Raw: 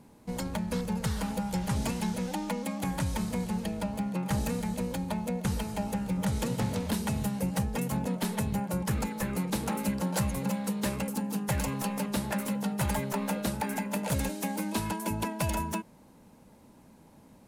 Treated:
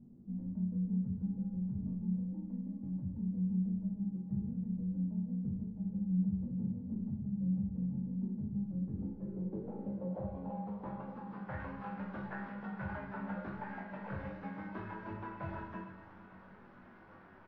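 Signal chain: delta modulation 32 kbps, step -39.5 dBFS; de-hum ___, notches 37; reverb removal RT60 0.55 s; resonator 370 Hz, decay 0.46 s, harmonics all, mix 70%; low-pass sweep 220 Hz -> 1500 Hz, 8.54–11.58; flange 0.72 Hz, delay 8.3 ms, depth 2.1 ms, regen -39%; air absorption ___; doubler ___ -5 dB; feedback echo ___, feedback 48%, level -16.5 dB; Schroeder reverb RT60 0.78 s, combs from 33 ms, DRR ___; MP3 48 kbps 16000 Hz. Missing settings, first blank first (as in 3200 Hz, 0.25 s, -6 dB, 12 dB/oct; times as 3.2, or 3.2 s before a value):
120.4 Hz, 62 m, 21 ms, 0.447 s, 2 dB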